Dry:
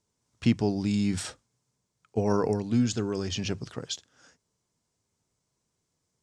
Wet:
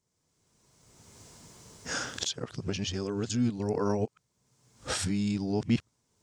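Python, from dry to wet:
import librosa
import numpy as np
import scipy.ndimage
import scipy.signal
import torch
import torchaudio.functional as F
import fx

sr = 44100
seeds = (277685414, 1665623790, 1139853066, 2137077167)

y = x[::-1].copy()
y = fx.recorder_agc(y, sr, target_db=-19.0, rise_db_per_s=25.0, max_gain_db=30)
y = y * 10.0 ** (-3.5 / 20.0)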